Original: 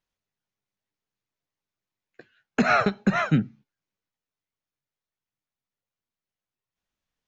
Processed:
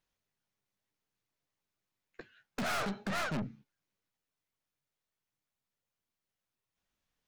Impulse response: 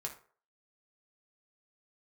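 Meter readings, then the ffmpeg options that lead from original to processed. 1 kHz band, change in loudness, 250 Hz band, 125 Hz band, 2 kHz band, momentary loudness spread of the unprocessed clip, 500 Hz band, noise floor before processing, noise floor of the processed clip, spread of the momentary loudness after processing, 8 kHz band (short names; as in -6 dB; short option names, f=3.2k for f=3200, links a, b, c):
-12.5 dB, -13.0 dB, -14.5 dB, -15.0 dB, -11.5 dB, 10 LU, -12.5 dB, under -85 dBFS, under -85 dBFS, 21 LU, n/a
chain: -af "aeval=exprs='(tanh(56.2*val(0)+0.35)-tanh(0.35))/56.2':c=same,volume=2dB"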